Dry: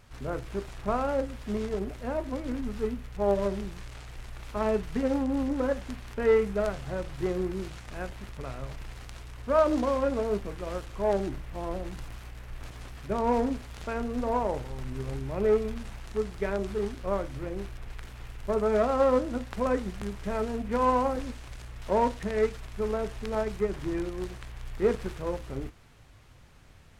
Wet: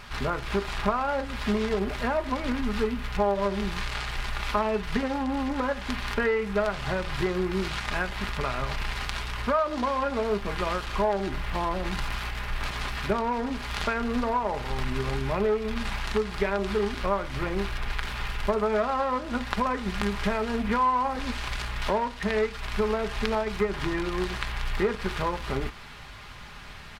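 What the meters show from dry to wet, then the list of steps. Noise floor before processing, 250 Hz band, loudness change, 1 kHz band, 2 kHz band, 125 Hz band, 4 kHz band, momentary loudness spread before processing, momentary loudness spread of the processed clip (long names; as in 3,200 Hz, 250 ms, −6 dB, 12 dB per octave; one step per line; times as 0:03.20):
−52 dBFS, +1.5 dB, +1.5 dB, +4.5 dB, +10.0 dB, +3.5 dB, +12.0 dB, 18 LU, 6 LU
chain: flat-topped bell 2,000 Hz +8.5 dB 2.9 octaves
downward compressor 6 to 1, threshold −33 dBFS, peak gain reduction 18 dB
comb filter 4.9 ms, depth 38%
level +8.5 dB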